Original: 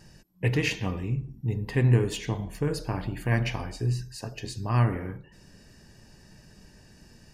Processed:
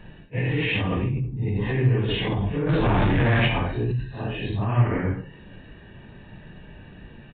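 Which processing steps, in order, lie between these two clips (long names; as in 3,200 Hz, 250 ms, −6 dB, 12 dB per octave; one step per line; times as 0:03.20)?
random phases in long frames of 200 ms
in parallel at +1.5 dB: compressor whose output falls as the input rises −32 dBFS, ratio −0.5
0:02.69–0:03.48: on the sum: power curve on the samples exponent 0.5
downsampling to 8,000 Hz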